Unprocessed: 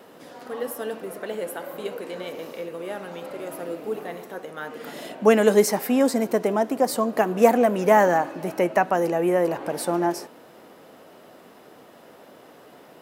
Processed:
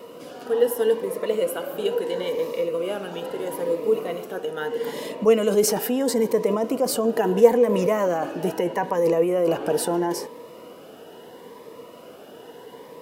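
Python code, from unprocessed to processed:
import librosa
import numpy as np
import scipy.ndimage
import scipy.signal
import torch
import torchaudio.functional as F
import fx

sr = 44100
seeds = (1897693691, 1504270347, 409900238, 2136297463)

p1 = fx.over_compress(x, sr, threshold_db=-25.0, ratio=-0.5)
p2 = x + (p1 * librosa.db_to_amplitude(1.0))
p3 = fx.small_body(p2, sr, hz=(470.0, 980.0, 2900.0), ring_ms=45, db=11)
p4 = fx.notch_cascade(p3, sr, direction='rising', hz=0.76)
y = p4 * librosa.db_to_amplitude(-5.5)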